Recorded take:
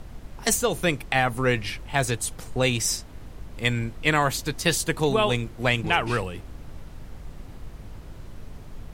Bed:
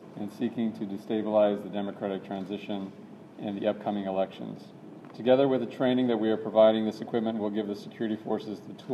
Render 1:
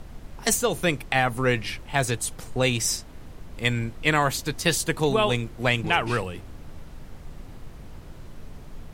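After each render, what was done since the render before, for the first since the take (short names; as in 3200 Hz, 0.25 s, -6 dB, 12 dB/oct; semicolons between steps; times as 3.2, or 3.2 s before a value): de-hum 50 Hz, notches 2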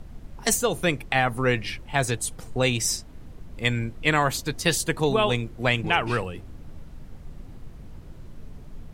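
denoiser 6 dB, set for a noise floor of -43 dBFS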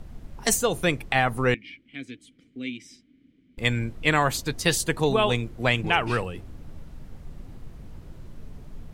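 1.54–3.58 vowel filter i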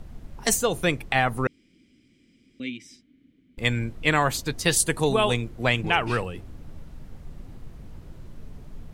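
1.47–2.6 room tone; 4.76–5.34 bell 9500 Hz +10.5 dB 0.6 oct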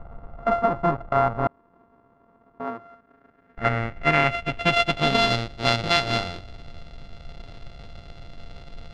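sample sorter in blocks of 64 samples; low-pass sweep 1100 Hz -> 4000 Hz, 2.6–5.33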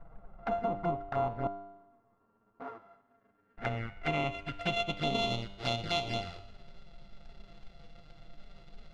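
envelope flanger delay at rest 10 ms, full sweep at -19 dBFS; resonator 99 Hz, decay 0.95 s, harmonics all, mix 70%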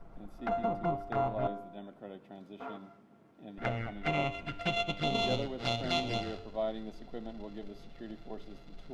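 add bed -14.5 dB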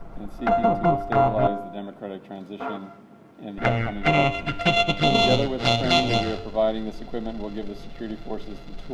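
gain +12 dB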